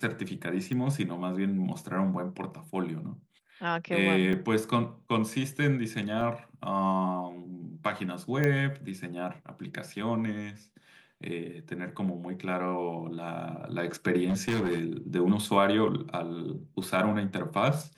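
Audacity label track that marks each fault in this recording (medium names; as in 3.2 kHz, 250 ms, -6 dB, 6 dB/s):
0.730000	0.730000	pop -24 dBFS
4.330000	4.330000	dropout 3.8 ms
6.210000	6.210000	dropout 3 ms
8.440000	8.440000	pop -15 dBFS
14.290000	14.800000	clipped -24.5 dBFS
16.830000	16.830000	dropout 3.3 ms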